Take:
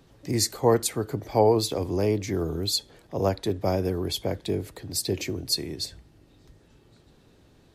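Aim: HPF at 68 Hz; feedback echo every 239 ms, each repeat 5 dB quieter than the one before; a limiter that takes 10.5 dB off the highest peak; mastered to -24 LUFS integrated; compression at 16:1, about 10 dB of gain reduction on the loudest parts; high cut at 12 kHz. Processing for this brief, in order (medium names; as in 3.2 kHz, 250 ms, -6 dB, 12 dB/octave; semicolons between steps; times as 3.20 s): high-pass 68 Hz; low-pass 12 kHz; compression 16:1, threshold -24 dBFS; peak limiter -26 dBFS; feedback delay 239 ms, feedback 56%, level -5 dB; trim +10.5 dB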